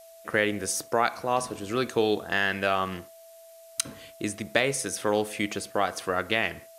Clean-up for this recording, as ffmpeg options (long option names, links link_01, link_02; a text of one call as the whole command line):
ffmpeg -i in.wav -af "bandreject=frequency=660:width=30,afftdn=noise_reduction=23:noise_floor=-50" out.wav